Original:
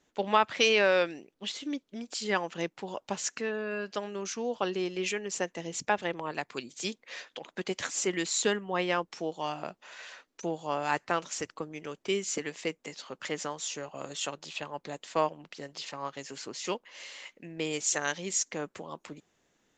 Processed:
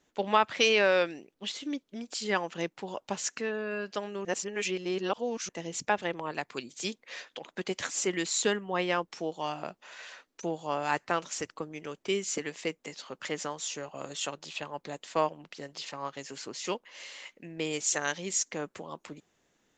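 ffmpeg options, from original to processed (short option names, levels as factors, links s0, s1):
-filter_complex "[0:a]asplit=3[s0][s1][s2];[s0]atrim=end=4.252[s3];[s1]atrim=start=4.248:end=5.492,asetpts=PTS-STARTPTS,areverse[s4];[s2]atrim=start=5.488[s5];[s3][s4]acrossfade=d=0.004:c1=hsin:c2=hsin[s6];[s6][s5]acrossfade=d=0.004:c1=hsin:c2=hsin"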